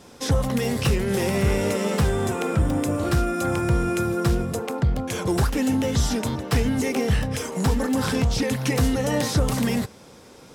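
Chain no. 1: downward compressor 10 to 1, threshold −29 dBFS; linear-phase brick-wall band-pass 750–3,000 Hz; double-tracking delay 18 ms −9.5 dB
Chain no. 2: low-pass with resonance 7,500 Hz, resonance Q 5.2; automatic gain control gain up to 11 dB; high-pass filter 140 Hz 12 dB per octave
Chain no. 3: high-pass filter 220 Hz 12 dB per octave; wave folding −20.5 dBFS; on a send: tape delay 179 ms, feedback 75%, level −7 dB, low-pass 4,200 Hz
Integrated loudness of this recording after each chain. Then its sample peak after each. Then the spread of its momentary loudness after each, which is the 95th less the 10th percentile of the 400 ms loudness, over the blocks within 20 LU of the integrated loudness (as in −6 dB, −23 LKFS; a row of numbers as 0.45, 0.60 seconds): −41.5, −16.0, −26.5 LKFS; −22.0, −1.0, −16.0 dBFS; 5, 4, 4 LU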